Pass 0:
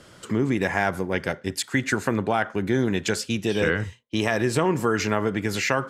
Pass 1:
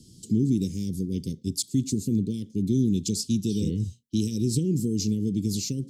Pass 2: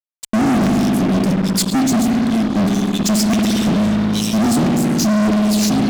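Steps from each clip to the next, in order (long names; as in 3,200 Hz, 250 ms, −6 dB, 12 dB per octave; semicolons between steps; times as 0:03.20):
inverse Chebyshev band-stop filter 670–1,600 Hz, stop band 70 dB; parametric band 480 Hz +15 dB 1.2 octaves; level +1 dB
auto-filter high-pass square 1.5 Hz 210–2,500 Hz; spring reverb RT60 3.1 s, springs 57 ms, chirp 50 ms, DRR 1.5 dB; fuzz pedal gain 31 dB, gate −38 dBFS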